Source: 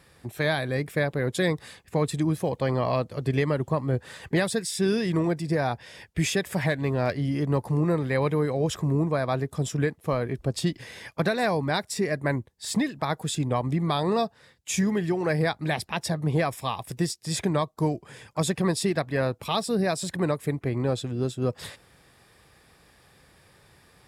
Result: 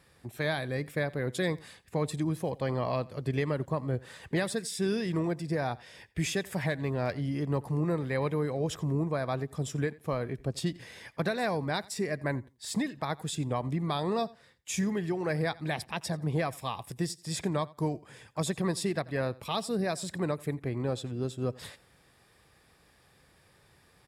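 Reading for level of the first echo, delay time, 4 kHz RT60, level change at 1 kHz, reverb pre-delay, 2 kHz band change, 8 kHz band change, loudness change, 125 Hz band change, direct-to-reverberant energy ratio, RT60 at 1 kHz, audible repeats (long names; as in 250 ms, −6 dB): −22.0 dB, 87 ms, no reverb audible, −5.5 dB, no reverb audible, −5.5 dB, −5.5 dB, −5.5 dB, −5.5 dB, no reverb audible, no reverb audible, 1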